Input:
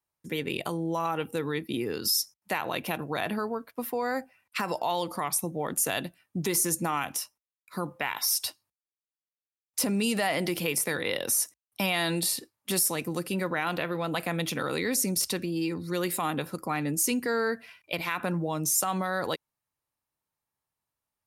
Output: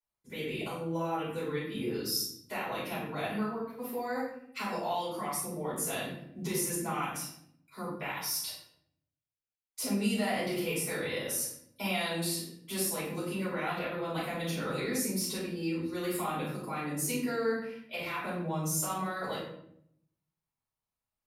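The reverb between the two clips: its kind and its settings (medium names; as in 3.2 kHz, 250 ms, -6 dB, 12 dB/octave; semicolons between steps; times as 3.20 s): simulated room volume 140 m³, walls mixed, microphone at 4.8 m; trim -19 dB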